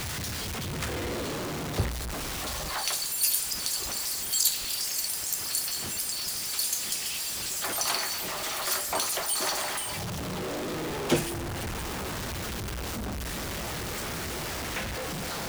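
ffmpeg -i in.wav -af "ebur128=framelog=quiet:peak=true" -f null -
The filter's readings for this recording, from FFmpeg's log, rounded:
Integrated loudness:
  I:         -29.2 LUFS
  Threshold: -39.2 LUFS
Loudness range:
  LRA:         6.5 LU
  Threshold: -48.8 LUFS
  LRA low:   -33.1 LUFS
  LRA high:  -26.6 LUFS
True peak:
  Peak:       -9.9 dBFS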